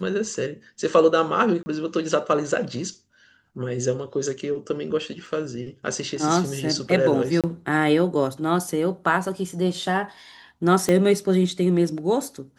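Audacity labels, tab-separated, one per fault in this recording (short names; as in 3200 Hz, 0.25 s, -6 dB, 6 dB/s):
1.630000	1.660000	gap 30 ms
5.260000	5.260000	gap 2.8 ms
7.410000	7.440000	gap 27 ms
10.890000	10.890000	pop -9 dBFS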